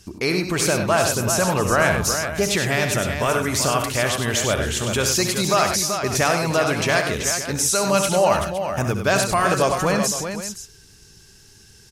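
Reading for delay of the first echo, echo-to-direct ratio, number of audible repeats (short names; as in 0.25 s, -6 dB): 67 ms, -3.0 dB, 5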